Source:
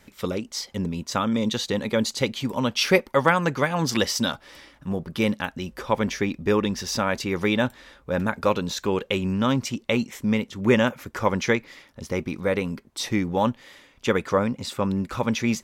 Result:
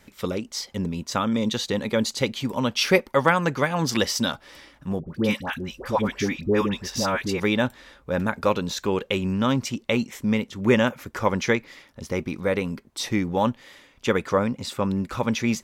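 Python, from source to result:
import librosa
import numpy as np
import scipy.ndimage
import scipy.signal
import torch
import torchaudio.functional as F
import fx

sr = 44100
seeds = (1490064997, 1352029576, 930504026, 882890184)

y = fx.dispersion(x, sr, late='highs', ms=90.0, hz=940.0, at=(5.0, 7.4))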